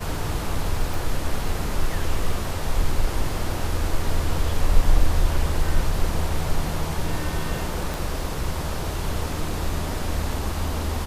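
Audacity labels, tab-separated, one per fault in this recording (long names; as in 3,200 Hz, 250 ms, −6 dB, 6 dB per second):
0.940000	0.940000	click
7.940000	7.940000	click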